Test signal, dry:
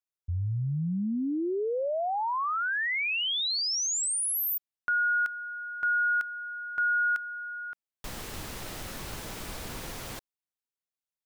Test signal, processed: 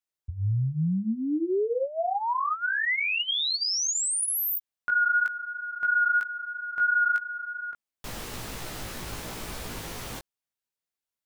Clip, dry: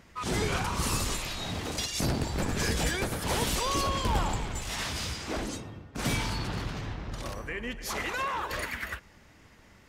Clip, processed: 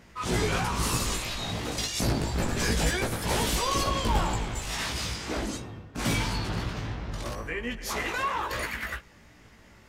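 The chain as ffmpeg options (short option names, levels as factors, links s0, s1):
-af "flanger=delay=16.5:depth=2.2:speed=3,volume=1.78"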